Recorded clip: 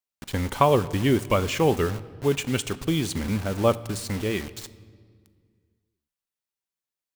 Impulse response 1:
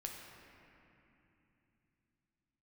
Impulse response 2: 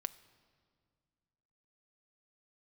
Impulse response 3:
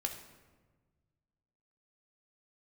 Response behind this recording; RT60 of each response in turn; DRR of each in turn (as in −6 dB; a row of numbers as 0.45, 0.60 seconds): 2; 3.0, 2.0, 1.4 seconds; 0.0, 13.0, 3.5 decibels